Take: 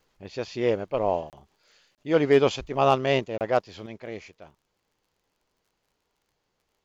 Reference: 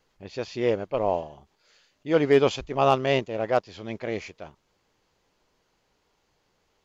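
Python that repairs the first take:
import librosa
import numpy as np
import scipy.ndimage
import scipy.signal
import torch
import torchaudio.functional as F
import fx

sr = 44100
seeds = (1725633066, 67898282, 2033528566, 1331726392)

y = fx.fix_declick_ar(x, sr, threshold=6.5)
y = fx.fix_interpolate(y, sr, at_s=(1.3, 1.95, 3.38), length_ms=28.0)
y = fx.gain(y, sr, db=fx.steps((0.0, 0.0), (3.86, 6.5)))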